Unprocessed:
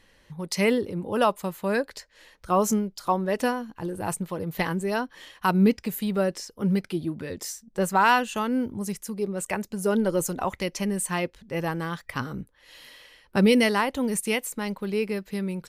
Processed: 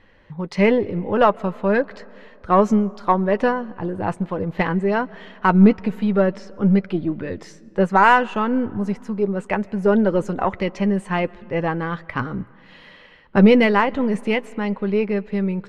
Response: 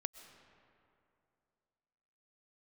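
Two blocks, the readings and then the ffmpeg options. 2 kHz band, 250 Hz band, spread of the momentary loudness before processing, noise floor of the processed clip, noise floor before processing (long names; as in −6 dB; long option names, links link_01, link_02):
+5.0 dB, +7.0 dB, 12 LU, −48 dBFS, −61 dBFS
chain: -filter_complex "[0:a]lowpass=2200,aeval=exprs='0.335*(cos(1*acos(clip(val(0)/0.335,-1,1)))-cos(1*PI/2))+0.0266*(cos(2*acos(clip(val(0)/0.335,-1,1)))-cos(2*PI/2))+0.00596*(cos(6*acos(clip(val(0)/0.335,-1,1)))-cos(6*PI/2))':channel_layout=same,asplit=2[link_01][link_02];[1:a]atrim=start_sample=2205,adelay=10[link_03];[link_02][link_03]afir=irnorm=-1:irlink=0,volume=-11dB[link_04];[link_01][link_04]amix=inputs=2:normalize=0,volume=6.5dB"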